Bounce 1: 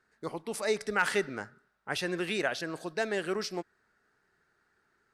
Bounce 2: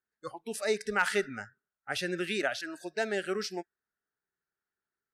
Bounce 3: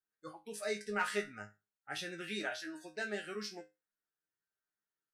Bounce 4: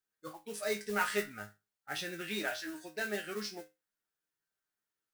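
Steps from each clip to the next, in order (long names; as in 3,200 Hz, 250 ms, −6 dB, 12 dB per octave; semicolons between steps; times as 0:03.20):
noise reduction from a noise print of the clip's start 21 dB
resonators tuned to a chord G#2 fifth, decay 0.23 s; level +4 dB
noise that follows the level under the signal 14 dB; level +2.5 dB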